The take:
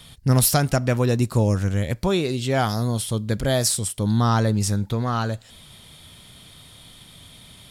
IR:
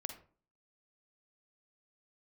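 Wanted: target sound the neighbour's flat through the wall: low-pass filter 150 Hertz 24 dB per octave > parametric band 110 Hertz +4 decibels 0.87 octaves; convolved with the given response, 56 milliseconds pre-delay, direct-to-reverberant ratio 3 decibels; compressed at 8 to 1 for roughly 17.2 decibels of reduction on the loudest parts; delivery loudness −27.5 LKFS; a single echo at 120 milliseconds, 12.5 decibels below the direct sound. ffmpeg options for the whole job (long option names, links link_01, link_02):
-filter_complex "[0:a]acompressor=threshold=-32dB:ratio=8,aecho=1:1:120:0.237,asplit=2[link_01][link_02];[1:a]atrim=start_sample=2205,adelay=56[link_03];[link_02][link_03]afir=irnorm=-1:irlink=0,volume=-1dB[link_04];[link_01][link_04]amix=inputs=2:normalize=0,lowpass=frequency=150:width=0.5412,lowpass=frequency=150:width=1.3066,equalizer=frequency=110:width_type=o:width=0.87:gain=4,volume=8dB"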